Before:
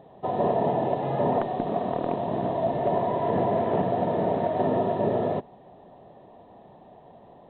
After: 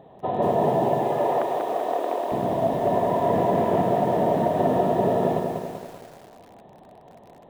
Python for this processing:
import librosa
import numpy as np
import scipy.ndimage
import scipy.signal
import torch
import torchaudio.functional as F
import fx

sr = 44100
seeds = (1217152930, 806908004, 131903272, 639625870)

y = fx.highpass(x, sr, hz=360.0, slope=24, at=(0.99, 2.32))
y = fx.echo_crushed(y, sr, ms=193, feedback_pct=55, bits=8, wet_db=-4)
y = y * 10.0 ** (1.5 / 20.0)